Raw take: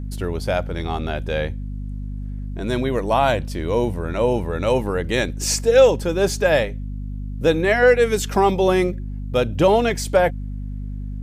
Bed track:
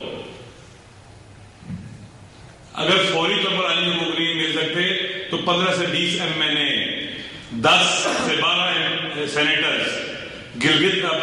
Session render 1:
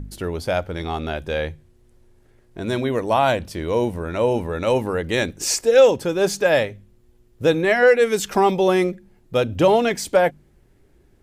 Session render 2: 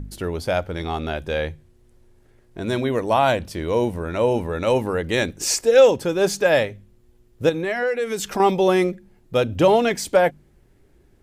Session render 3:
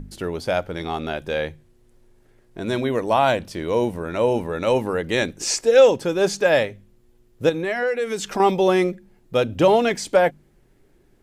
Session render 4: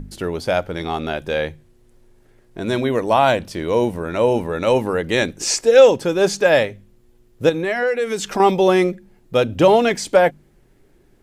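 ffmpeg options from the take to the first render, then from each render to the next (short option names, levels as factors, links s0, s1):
-af "bandreject=f=50:t=h:w=4,bandreject=f=100:t=h:w=4,bandreject=f=150:t=h:w=4,bandreject=f=200:t=h:w=4,bandreject=f=250:t=h:w=4"
-filter_complex "[0:a]asettb=1/sr,asplit=3[s0][s1][s2];[s0]atrim=end=7.494[s3];[s1]atrim=start=7.49:end=8.4,asetpts=PTS-STARTPTS,afade=t=in:d=0.004:c=qsin,afade=t=out:st=0.906:d=0.004:c=qsin,acompressor=threshold=0.0708:ratio=2.5:attack=3.2:release=140:knee=1:detection=peak[s4];[s2]atrim=start=8.396[s5];[s3][s4]acrossfade=d=0.004:c1=hsin:c2=qsin[s6];[s6][s5]acrossfade=d=0.004:c1=qsin:c2=hsin"
-filter_complex "[0:a]acrossover=split=8900[s0][s1];[s1]acompressor=threshold=0.00316:ratio=4:attack=1:release=60[s2];[s0][s2]amix=inputs=2:normalize=0,equalizer=f=68:t=o:w=0.81:g=-11"
-af "volume=1.41"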